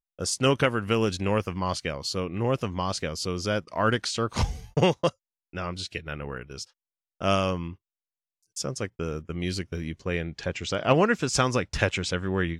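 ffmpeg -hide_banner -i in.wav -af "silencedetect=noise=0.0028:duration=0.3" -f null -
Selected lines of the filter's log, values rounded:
silence_start: 5.12
silence_end: 5.53 | silence_duration: 0.42
silence_start: 6.70
silence_end: 7.21 | silence_duration: 0.51
silence_start: 7.76
silence_end: 8.43 | silence_duration: 0.68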